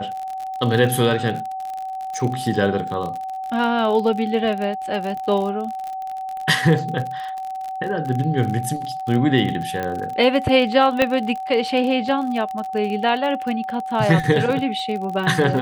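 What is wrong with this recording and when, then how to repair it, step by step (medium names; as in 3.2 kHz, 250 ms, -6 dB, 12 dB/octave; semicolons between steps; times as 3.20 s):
crackle 45 per s -26 dBFS
whine 760 Hz -26 dBFS
9.83 s: pop -13 dBFS
11.02 s: pop -5 dBFS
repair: de-click; band-stop 760 Hz, Q 30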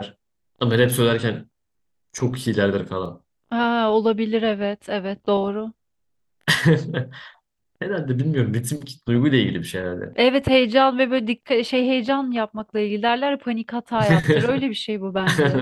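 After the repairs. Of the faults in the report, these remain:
nothing left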